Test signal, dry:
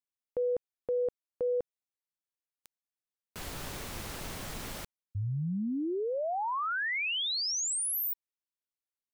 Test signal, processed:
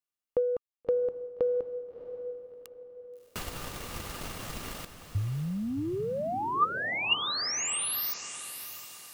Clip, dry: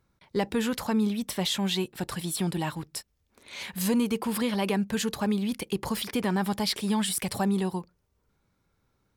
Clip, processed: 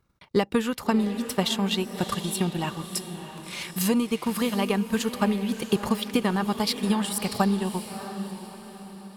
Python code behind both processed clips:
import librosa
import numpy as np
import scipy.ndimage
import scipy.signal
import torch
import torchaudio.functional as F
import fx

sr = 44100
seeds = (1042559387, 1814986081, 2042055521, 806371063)

y = fx.small_body(x, sr, hz=(1200.0, 2800.0), ring_ms=45, db=9)
y = fx.transient(y, sr, attack_db=7, sustain_db=-10)
y = fx.echo_diffused(y, sr, ms=650, feedback_pct=43, wet_db=-10.0)